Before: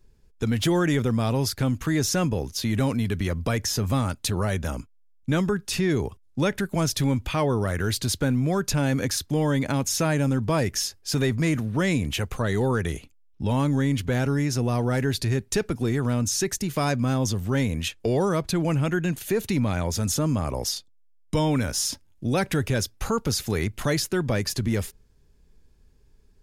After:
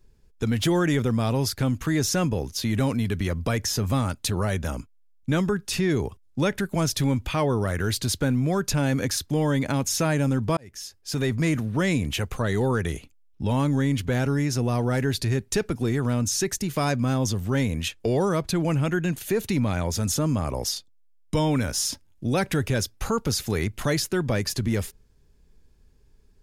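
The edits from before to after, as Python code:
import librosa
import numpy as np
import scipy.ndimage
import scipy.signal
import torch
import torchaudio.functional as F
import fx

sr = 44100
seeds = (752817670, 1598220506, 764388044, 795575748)

y = fx.edit(x, sr, fx.fade_in_span(start_s=10.57, length_s=0.82), tone=tone)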